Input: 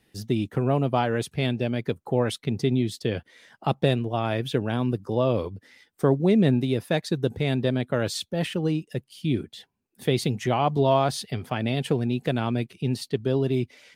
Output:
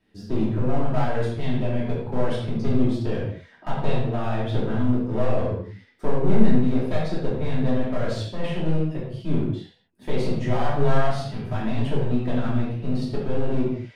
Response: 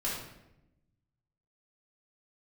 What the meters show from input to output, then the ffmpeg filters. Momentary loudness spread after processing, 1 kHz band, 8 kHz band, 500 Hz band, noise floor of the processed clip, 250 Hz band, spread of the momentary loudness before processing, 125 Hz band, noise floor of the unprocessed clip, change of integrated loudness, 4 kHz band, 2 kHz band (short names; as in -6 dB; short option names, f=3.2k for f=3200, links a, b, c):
7 LU, -2.0 dB, under -10 dB, -1.5 dB, -54 dBFS, +1.0 dB, 8 LU, +1.0 dB, -70 dBFS, -0.5 dB, -6.5 dB, -2.0 dB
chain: -filter_complex "[0:a]aemphasis=mode=reproduction:type=75fm,aeval=exprs='clip(val(0),-1,0.0398)':c=same[a];[1:a]atrim=start_sample=2205,afade=t=out:st=0.31:d=0.01,atrim=end_sample=14112[b];[a][b]afir=irnorm=-1:irlink=0,volume=-4dB"